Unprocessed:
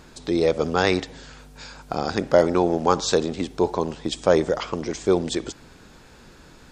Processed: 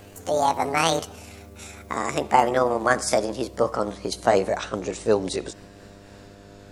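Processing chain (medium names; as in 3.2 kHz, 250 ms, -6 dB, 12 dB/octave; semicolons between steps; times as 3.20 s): pitch bend over the whole clip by +10 st ending unshifted; mains buzz 100 Hz, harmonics 7, -48 dBFS -2 dB/octave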